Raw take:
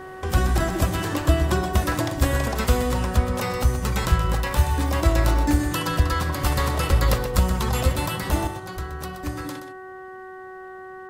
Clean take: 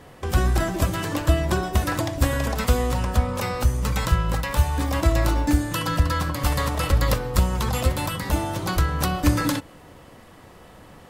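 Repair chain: de-hum 375.1 Hz, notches 5; inverse comb 125 ms -9.5 dB; gain correction +11.5 dB, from 8.47 s

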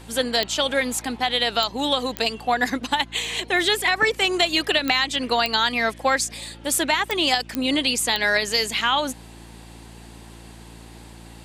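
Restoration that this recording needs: de-click; de-hum 56.8 Hz, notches 6

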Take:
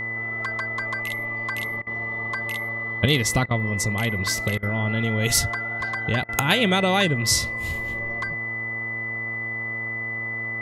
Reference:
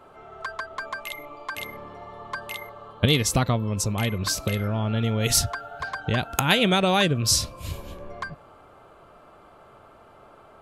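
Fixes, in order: de-hum 113.5 Hz, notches 11; band-stop 2 kHz, Q 30; interpolate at 1.82/3.46/4.58/6.24 s, 46 ms

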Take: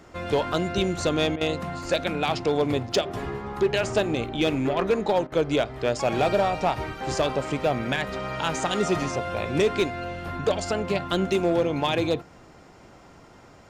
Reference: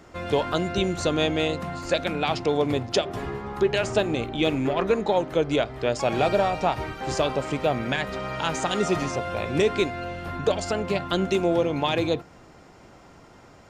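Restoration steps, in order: clip repair -15 dBFS; interpolate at 1.36/5.27 s, 48 ms

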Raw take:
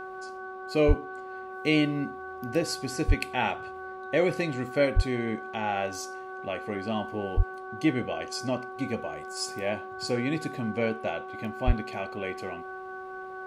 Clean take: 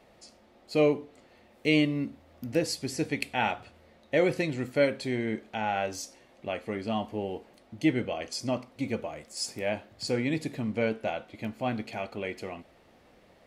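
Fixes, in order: de-hum 376.1 Hz, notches 4; band-stop 1.5 kHz, Q 30; de-plosive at 0.87/3.07/4.95/7.36/11.66 s

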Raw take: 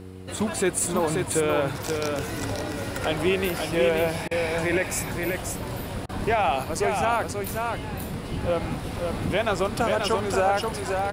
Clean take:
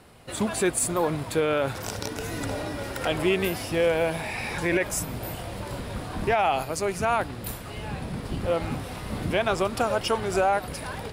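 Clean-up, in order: de-hum 93.1 Hz, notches 5; interpolate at 4.28/6.06 s, 30 ms; inverse comb 532 ms -4.5 dB

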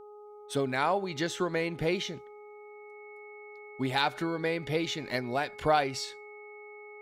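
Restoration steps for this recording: de-hum 417.2 Hz, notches 3; band-stop 2.2 kHz, Q 30

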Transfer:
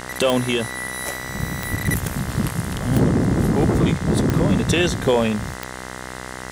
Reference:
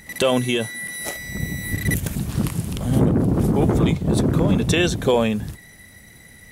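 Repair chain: de-click; de-hum 63.4 Hz, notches 33; interpolate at 1.86 s, 4.1 ms; noise print and reduce 12 dB

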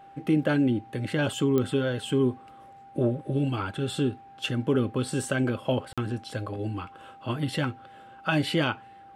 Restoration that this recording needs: de-click; band-stop 790 Hz, Q 30; interpolate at 5.93 s, 46 ms

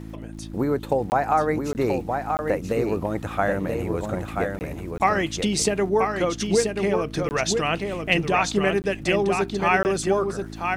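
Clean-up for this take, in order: de-click; de-hum 54.1 Hz, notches 6; interpolate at 1.10/1.73/2.37/4.59/4.98/7.29/8.82/9.83 s, 19 ms; inverse comb 982 ms -5 dB

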